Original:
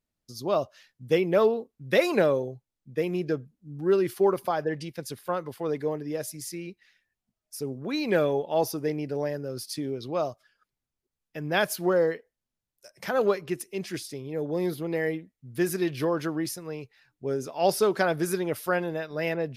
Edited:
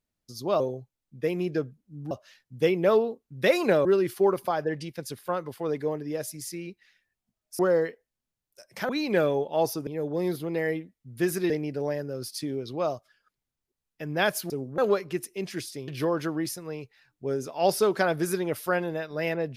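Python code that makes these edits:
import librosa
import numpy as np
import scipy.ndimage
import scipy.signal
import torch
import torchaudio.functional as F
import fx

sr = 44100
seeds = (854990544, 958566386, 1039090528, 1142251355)

y = fx.edit(x, sr, fx.move(start_s=2.34, length_s=1.51, to_s=0.6),
    fx.swap(start_s=7.59, length_s=0.28, other_s=11.85, other_length_s=1.3),
    fx.move(start_s=14.25, length_s=1.63, to_s=8.85), tone=tone)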